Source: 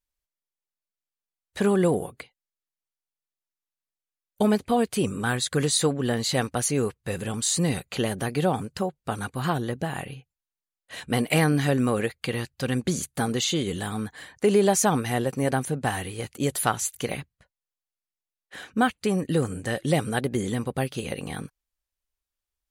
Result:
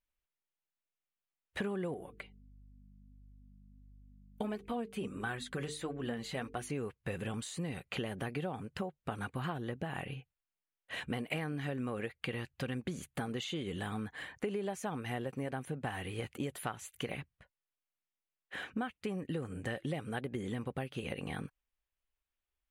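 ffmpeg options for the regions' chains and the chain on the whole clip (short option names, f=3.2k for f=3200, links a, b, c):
-filter_complex "[0:a]asettb=1/sr,asplit=3[a][b][c];[a]atrim=end=1.944[d];[b]atrim=start=1.94:end=6.7,asetpts=PTS-STARTPTS,afade=t=in:d=0.004:c=qsin,afade=t=out:st=4.756:d=0.004:c=qsin,bandreject=f=50:t=h:w=6,bandreject=f=100:t=h:w=6,bandreject=f=150:t=h:w=6,bandreject=f=200:t=h:w=6,bandreject=f=250:t=h:w=6,bandreject=f=300:t=h:w=6,bandreject=f=350:t=h:w=6,bandreject=f=400:t=h:w=6,bandreject=f=450:t=h:w=6,aeval=exprs='val(0)+0.00316*(sin(2*PI*50*n/s)+sin(2*PI*2*50*n/s)/2+sin(2*PI*3*50*n/s)/3+sin(2*PI*4*50*n/s)/4+sin(2*PI*5*50*n/s)/5)':c=same,flanger=delay=2.6:depth=2.7:regen=47:speed=1.5:shape=sinusoidal[e];[c]atrim=start=6.696[f];[d][e]acrossfade=d=0.004:c1=hsin:c2=qsin[g];[g][f]acrossfade=d=0.004:c1=qsin:c2=hsin,acompressor=threshold=-33dB:ratio=6,highshelf=f=3.7k:t=q:w=1.5:g=-8,volume=-2dB"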